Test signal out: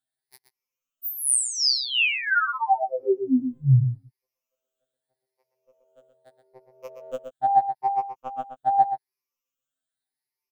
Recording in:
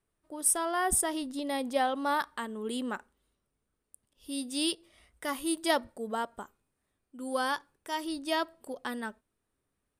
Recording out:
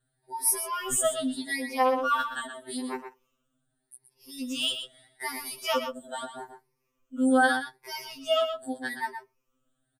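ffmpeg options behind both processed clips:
ffmpeg -i in.wav -filter_complex "[0:a]afftfilt=real='re*pow(10,17/40*sin(2*PI*(0.82*log(max(b,1)*sr/1024/100)/log(2)-(0.81)*(pts-256)/sr)))':imag='im*pow(10,17/40*sin(2*PI*(0.82*log(max(b,1)*sr/1024/100)/log(2)-(0.81)*(pts-256)/sr)))':win_size=1024:overlap=0.75,asplit=2[link_01][link_02];[link_02]adelay=122.4,volume=-8dB,highshelf=frequency=4000:gain=-2.76[link_03];[link_01][link_03]amix=inputs=2:normalize=0,afftfilt=real='re*2.45*eq(mod(b,6),0)':imag='im*2.45*eq(mod(b,6),0)':win_size=2048:overlap=0.75,volume=2.5dB" out.wav

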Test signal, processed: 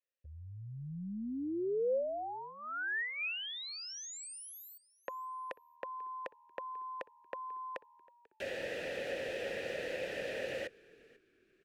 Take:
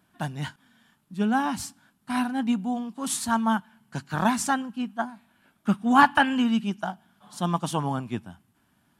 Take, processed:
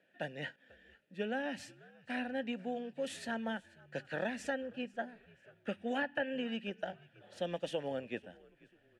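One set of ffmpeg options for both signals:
ffmpeg -i in.wav -filter_complex "[0:a]asplit=3[link_01][link_02][link_03];[link_01]bandpass=frequency=530:width_type=q:width=8,volume=0dB[link_04];[link_02]bandpass=frequency=1840:width_type=q:width=8,volume=-6dB[link_05];[link_03]bandpass=frequency=2480:width_type=q:width=8,volume=-9dB[link_06];[link_04][link_05][link_06]amix=inputs=3:normalize=0,acrossover=split=550|1600[link_07][link_08][link_09];[link_07]acompressor=threshold=-47dB:ratio=4[link_10];[link_08]acompressor=threshold=-53dB:ratio=4[link_11];[link_09]acompressor=threshold=-54dB:ratio=4[link_12];[link_10][link_11][link_12]amix=inputs=3:normalize=0,asplit=3[link_13][link_14][link_15];[link_14]adelay=491,afreqshift=-78,volume=-23dB[link_16];[link_15]adelay=982,afreqshift=-156,volume=-31.9dB[link_17];[link_13][link_16][link_17]amix=inputs=3:normalize=0,volume=10dB" out.wav

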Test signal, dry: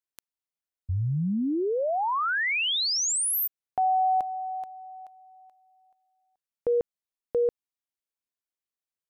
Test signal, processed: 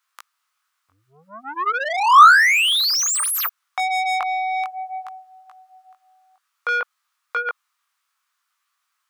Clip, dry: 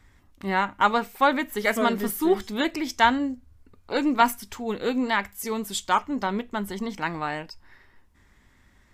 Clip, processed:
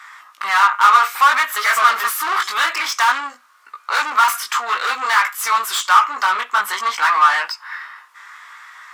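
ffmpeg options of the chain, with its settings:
ffmpeg -i in.wav -filter_complex "[0:a]flanger=delay=16.5:depth=5.1:speed=0.56,asplit=2[link_01][link_02];[link_02]highpass=frequency=720:poles=1,volume=35dB,asoftclip=type=tanh:threshold=-6dB[link_03];[link_01][link_03]amix=inputs=2:normalize=0,lowpass=frequency=7400:poles=1,volume=-6dB,highpass=frequency=1200:width_type=q:width=4.8,volume=-6dB" out.wav

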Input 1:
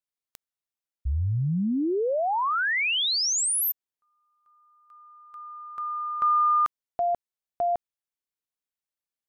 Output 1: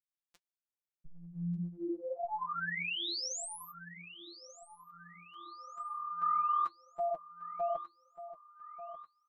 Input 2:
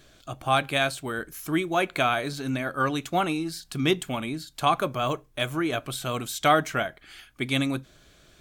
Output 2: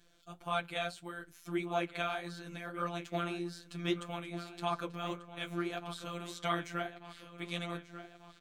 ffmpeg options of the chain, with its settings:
ffmpeg -i in.wav -filter_complex "[0:a]acrossover=split=8000[link_01][link_02];[link_02]acompressor=threshold=-52dB:ratio=4:attack=1:release=60[link_03];[link_01][link_03]amix=inputs=2:normalize=0,afftfilt=real='hypot(re,im)*cos(PI*b)':imag='0':win_size=1024:overlap=0.75,flanger=delay=4.4:depth=6.7:regen=-38:speed=1.7:shape=sinusoidal,asplit=2[link_04][link_05];[link_05]adelay=1190,lowpass=frequency=4900:poles=1,volume=-13.5dB,asplit=2[link_06][link_07];[link_07]adelay=1190,lowpass=frequency=4900:poles=1,volume=0.51,asplit=2[link_08][link_09];[link_09]adelay=1190,lowpass=frequency=4900:poles=1,volume=0.51,asplit=2[link_10][link_11];[link_11]adelay=1190,lowpass=frequency=4900:poles=1,volume=0.51,asplit=2[link_12][link_13];[link_13]adelay=1190,lowpass=frequency=4900:poles=1,volume=0.51[link_14];[link_06][link_08][link_10][link_12][link_14]amix=inputs=5:normalize=0[link_15];[link_04][link_15]amix=inputs=2:normalize=0,volume=-5dB" out.wav

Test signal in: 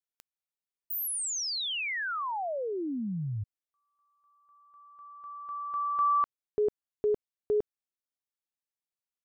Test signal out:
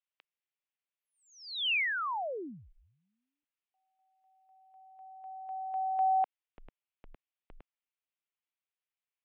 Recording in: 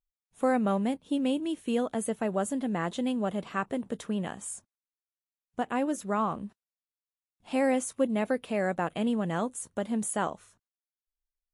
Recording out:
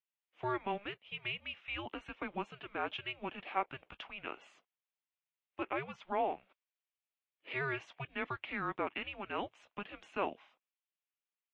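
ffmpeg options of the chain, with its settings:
ffmpeg -i in.wav -af "equalizer=frequency=250:width_type=o:width=1:gain=-9,equalizer=frequency=500:width_type=o:width=1:gain=-11,equalizer=frequency=2000:width_type=o:width=1:gain=-5,crystalizer=i=8.5:c=0,highpass=frequency=580:width_type=q:width=0.5412,highpass=frequency=580:width_type=q:width=1.307,lowpass=frequency=3200:width_type=q:width=0.5176,lowpass=frequency=3200:width_type=q:width=0.7071,lowpass=frequency=3200:width_type=q:width=1.932,afreqshift=-400,volume=-3.5dB" out.wav

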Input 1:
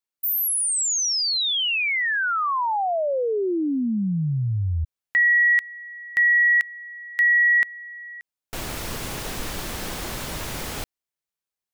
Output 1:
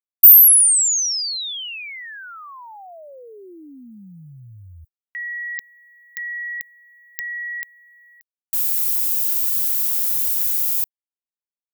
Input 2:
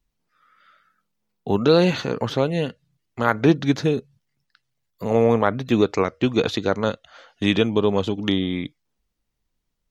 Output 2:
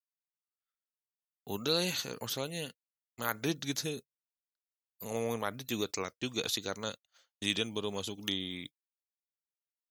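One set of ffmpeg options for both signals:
ffmpeg -i in.wav -af "crystalizer=i=5:c=0,agate=range=-39dB:threshold=-34dB:ratio=3:release=74:detection=peak,aemphasis=mode=production:type=50fm,volume=-17.5dB" out.wav

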